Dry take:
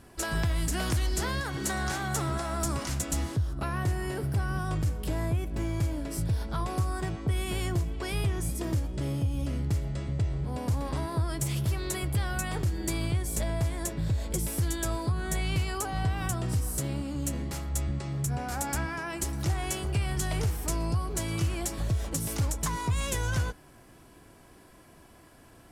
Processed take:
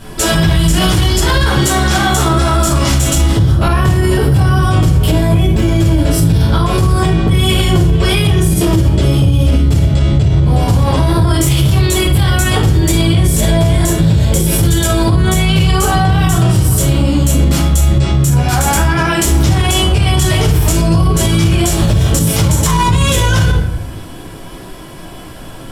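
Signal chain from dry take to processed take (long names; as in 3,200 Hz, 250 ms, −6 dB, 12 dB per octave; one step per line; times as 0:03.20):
parametric band 3,300 Hz +7 dB 0.32 octaves
rectangular room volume 73 cubic metres, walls mixed, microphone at 1.6 metres
boost into a limiter +16.5 dB
level −2 dB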